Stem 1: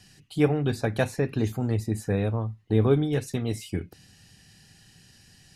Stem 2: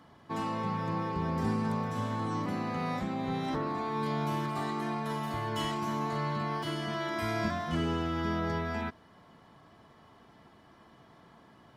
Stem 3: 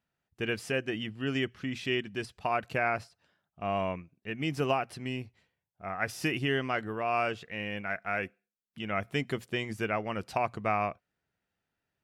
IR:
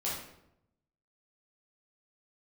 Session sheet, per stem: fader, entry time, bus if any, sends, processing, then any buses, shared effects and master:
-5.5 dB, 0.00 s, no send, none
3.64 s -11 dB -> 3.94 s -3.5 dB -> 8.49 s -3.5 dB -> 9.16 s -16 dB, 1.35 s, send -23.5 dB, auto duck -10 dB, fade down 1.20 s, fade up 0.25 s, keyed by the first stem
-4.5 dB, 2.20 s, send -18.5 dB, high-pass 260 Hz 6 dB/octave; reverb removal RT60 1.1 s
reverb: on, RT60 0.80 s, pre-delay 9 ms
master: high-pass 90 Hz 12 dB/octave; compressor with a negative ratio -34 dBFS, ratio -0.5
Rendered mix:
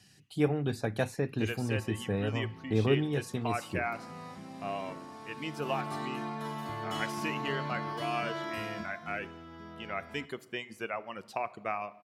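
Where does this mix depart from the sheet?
stem 3: entry 2.20 s -> 1.00 s; master: missing compressor with a negative ratio -34 dBFS, ratio -0.5

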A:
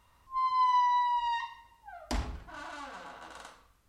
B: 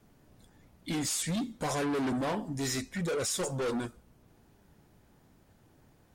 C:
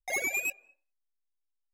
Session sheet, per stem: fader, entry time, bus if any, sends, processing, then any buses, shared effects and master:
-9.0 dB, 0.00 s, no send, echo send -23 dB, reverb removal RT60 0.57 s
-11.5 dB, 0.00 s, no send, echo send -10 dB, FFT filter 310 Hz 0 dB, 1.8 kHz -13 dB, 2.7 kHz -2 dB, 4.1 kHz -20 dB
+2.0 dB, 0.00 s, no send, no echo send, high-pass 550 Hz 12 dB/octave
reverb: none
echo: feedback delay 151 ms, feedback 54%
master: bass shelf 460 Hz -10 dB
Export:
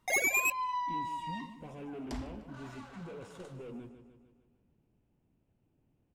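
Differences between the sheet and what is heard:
stem A: missing reverb removal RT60 0.57 s; stem C: missing high-pass 550 Hz 12 dB/octave; master: missing bass shelf 460 Hz -10 dB

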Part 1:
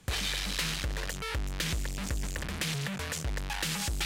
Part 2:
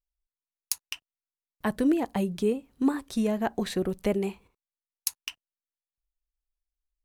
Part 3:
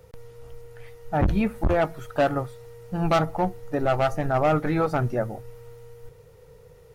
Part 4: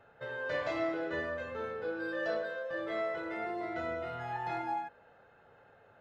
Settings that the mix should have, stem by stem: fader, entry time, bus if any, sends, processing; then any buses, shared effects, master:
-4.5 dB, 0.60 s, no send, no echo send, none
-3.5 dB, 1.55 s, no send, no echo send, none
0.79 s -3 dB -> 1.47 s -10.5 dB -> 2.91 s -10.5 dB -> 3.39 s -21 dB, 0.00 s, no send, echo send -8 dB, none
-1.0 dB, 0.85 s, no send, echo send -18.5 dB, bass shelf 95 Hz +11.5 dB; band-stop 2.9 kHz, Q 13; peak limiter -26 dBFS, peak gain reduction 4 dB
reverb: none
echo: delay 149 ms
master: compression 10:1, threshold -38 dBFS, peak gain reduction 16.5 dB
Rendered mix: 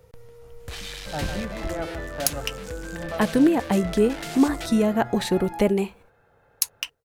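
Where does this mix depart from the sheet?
stem 2 -3.5 dB -> +6.0 dB; master: missing compression 10:1, threshold -38 dBFS, peak gain reduction 16.5 dB

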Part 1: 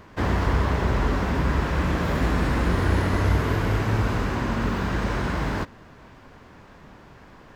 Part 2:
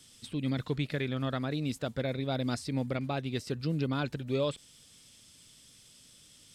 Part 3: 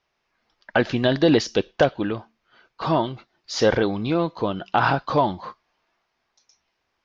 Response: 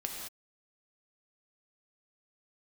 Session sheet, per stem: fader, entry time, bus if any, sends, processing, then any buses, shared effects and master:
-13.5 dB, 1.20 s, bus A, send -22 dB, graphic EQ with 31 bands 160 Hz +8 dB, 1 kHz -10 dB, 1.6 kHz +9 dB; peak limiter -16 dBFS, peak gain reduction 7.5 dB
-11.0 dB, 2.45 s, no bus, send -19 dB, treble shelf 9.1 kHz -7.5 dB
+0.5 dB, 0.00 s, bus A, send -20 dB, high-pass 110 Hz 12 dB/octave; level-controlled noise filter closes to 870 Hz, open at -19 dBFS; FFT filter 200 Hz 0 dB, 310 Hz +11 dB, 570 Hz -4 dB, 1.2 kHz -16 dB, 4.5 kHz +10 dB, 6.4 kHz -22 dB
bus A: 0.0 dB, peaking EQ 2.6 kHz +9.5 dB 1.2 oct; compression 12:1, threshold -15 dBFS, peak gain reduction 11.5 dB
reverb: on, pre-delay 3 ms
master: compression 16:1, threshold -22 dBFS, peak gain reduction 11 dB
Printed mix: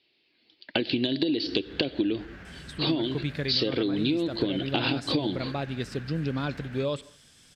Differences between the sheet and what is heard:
stem 1 -13.5 dB -> -22.5 dB; stem 2 -11.0 dB -> +1.0 dB; stem 3: missing level-controlled noise filter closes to 870 Hz, open at -19 dBFS

